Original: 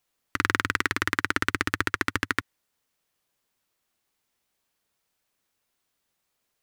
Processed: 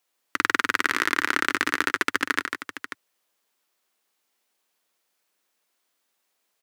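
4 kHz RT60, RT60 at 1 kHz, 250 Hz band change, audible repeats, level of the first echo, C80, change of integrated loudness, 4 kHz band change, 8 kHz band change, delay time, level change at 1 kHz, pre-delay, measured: none, none, 0.0 dB, 2, -6.5 dB, none, +2.5 dB, +3.0 dB, +3.0 dB, 0.144 s, +3.0 dB, none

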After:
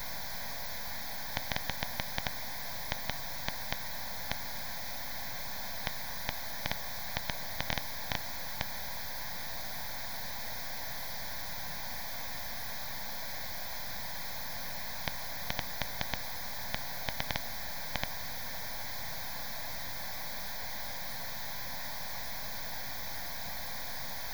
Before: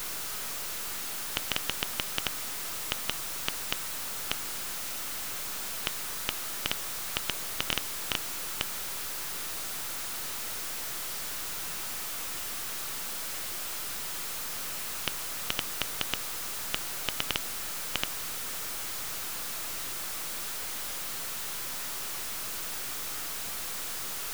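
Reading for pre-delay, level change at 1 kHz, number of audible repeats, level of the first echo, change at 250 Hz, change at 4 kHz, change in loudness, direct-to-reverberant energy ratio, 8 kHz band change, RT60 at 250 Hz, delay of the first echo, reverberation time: none, -0.5 dB, none, none, -1.0 dB, -5.5 dB, -5.0 dB, none, -10.5 dB, none, none, none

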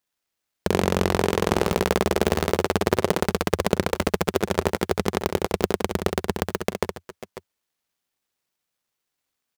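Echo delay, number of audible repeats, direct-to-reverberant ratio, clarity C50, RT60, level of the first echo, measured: 66 ms, 2, none, none, none, -6.5 dB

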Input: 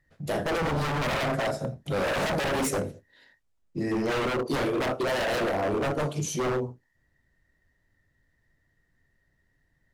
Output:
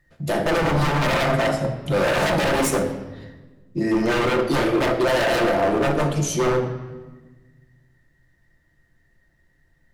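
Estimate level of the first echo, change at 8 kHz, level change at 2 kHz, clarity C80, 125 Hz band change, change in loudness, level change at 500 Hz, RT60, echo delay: none, +6.0 dB, +7.0 dB, 11.0 dB, +7.5 dB, +7.0 dB, +7.0 dB, 1.3 s, none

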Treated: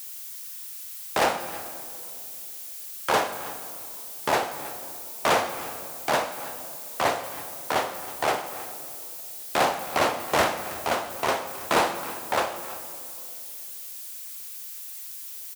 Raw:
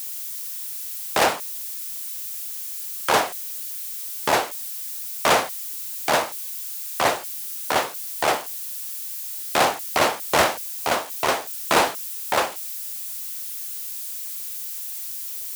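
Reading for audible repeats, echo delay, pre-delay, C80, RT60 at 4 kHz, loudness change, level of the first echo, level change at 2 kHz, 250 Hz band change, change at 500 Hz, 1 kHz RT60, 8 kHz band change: 1, 0.322 s, 21 ms, 10.5 dB, 1.6 s, -4.0 dB, -18.0 dB, -4.0 dB, -2.0 dB, -2.5 dB, 2.4 s, -6.5 dB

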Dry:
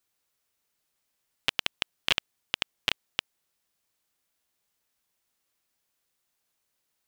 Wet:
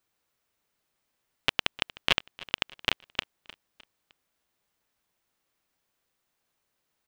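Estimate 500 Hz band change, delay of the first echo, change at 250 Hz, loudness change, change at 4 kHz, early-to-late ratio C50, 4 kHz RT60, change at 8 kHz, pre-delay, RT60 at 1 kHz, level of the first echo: +4.5 dB, 0.306 s, +4.5 dB, +1.0 dB, +0.5 dB, none, none, -2.5 dB, none, none, -20.0 dB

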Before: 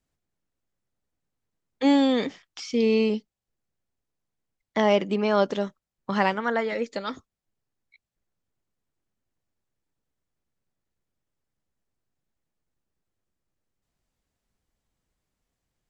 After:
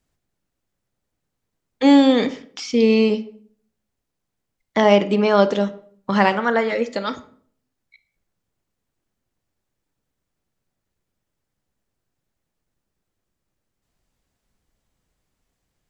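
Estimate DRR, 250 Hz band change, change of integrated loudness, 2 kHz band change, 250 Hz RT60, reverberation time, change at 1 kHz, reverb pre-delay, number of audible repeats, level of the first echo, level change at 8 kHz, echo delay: 11.5 dB, +7.0 dB, +6.5 dB, +6.0 dB, 0.65 s, 0.55 s, +6.5 dB, 27 ms, none, none, n/a, none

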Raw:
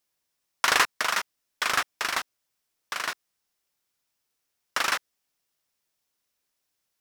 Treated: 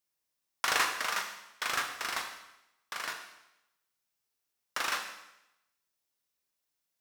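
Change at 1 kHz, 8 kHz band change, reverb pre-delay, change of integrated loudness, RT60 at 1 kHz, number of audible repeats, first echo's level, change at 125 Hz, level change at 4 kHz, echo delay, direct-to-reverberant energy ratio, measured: -6.0 dB, -5.5 dB, 19 ms, -6.5 dB, 0.85 s, none, none, -6.5 dB, -6.0 dB, none, 3.0 dB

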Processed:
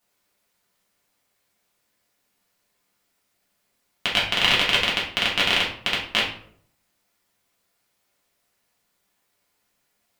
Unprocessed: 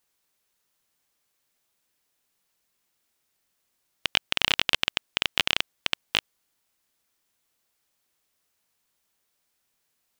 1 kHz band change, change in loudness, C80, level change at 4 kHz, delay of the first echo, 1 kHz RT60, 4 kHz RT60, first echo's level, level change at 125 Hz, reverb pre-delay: +7.0 dB, +4.5 dB, 10.5 dB, +4.0 dB, none, 0.55 s, 0.40 s, none, +7.0 dB, 3 ms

